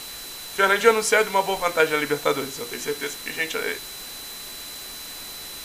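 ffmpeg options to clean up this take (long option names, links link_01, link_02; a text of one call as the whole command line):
ffmpeg -i in.wav -af "bandreject=frequency=4000:width=30,afwtdn=0.014" out.wav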